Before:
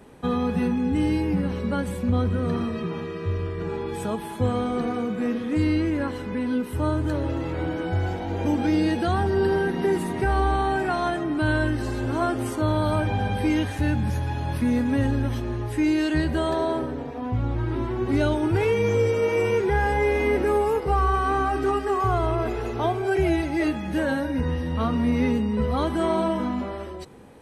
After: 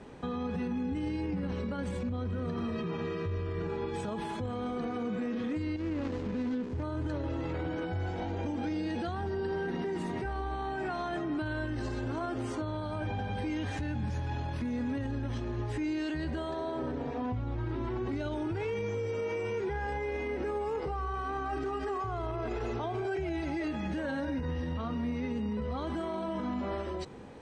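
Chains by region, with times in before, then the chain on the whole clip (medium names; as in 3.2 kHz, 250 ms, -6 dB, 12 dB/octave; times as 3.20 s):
5.76–6.83 s: median filter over 41 samples + compression 5:1, threshold -29 dBFS
whole clip: compression, threshold -24 dBFS; peak limiter -27 dBFS; low-pass 7.3 kHz 24 dB/octave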